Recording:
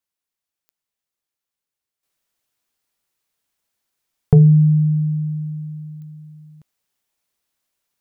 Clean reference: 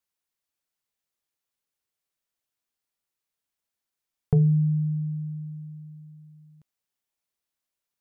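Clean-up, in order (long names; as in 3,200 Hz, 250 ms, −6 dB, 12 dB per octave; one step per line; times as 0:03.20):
click removal
level correction −9.5 dB, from 0:02.03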